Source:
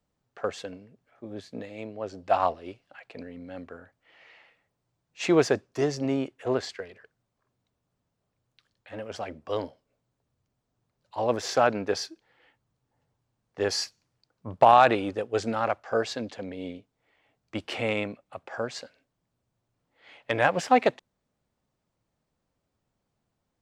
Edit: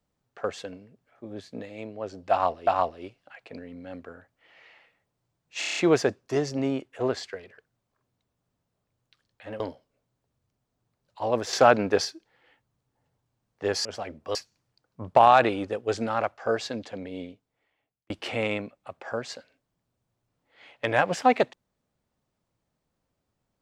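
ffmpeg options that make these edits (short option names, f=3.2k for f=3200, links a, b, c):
-filter_complex "[0:a]asplit=14[a][b][c][d][e][f][g][h][i][j][k][l][m][n];[a]atrim=end=2.672[o];[b]atrim=start=2.308:end=5.262[p];[c]atrim=start=5.228:end=5.262[q];[d]atrim=start=5.228:end=5.262[r];[e]atrim=start=5.228:end=5.262[s];[f]atrim=start=5.228:end=5.262[t];[g]atrim=start=5.228:end=5.262[u];[h]atrim=start=5.228:end=9.062[v];[i]atrim=start=9.558:end=11.492[w];[j]atrim=start=11.488:end=12.012,asetpts=PTS-STARTPTS,volume=4.5dB[x];[k]atrim=start=12.008:end=13.812[y];[l]atrim=start=9.058:end=9.562[z];[m]atrim=start=13.808:end=17.56,asetpts=PTS-STARTPTS,afade=t=out:st=2.802:d=0.95[aa];[n]atrim=start=17.56,asetpts=PTS-STARTPTS,afade=t=in:d=0.004:c=hsin[ab];[o][p]acrossfade=d=0.004:c1=hsin:c2=hsin[ac];[ac][q]acrossfade=d=0.004:c1=hsin:c2=hsin[ad];[ad][r]acrossfade=d=0.004:c1=hsin:c2=hsin[ae];[ae][s]acrossfade=d=0.004:c1=hsin:c2=hsin[af];[af][t]acrossfade=d=0.004:c1=hsin:c2=hsin[ag];[ag][u]acrossfade=d=0.004:c1=hsin:c2=hsin[ah];[ah][v]acrossfade=d=0.004:c1=hsin:c2=hsin[ai];[ai][w]acrossfade=d=0.004:c1=hsin:c2=hsin[aj];[aj][x]acrossfade=d=0.004:c1=hsin:c2=hsin[ak];[ak][y]acrossfade=d=0.004:c1=hsin:c2=hsin[al];[al][z]acrossfade=d=0.004:c1=hsin:c2=hsin[am];[aa][ab]concat=n=2:v=0:a=1[an];[am][an]acrossfade=d=0.004:c1=hsin:c2=hsin"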